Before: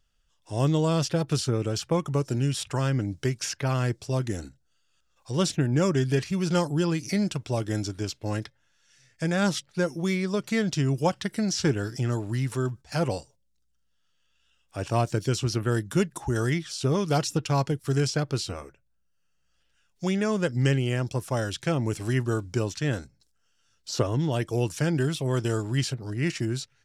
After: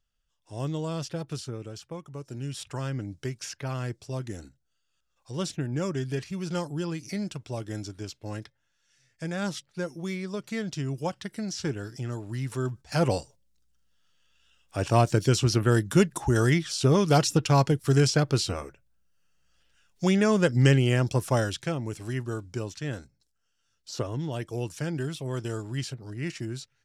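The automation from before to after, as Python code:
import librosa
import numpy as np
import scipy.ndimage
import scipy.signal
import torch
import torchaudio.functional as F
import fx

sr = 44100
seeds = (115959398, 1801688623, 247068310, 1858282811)

y = fx.gain(x, sr, db=fx.line((1.22, -8.0), (2.09, -15.0), (2.61, -6.5), (12.21, -6.5), (13.15, 3.5), (21.35, 3.5), (21.81, -6.0)))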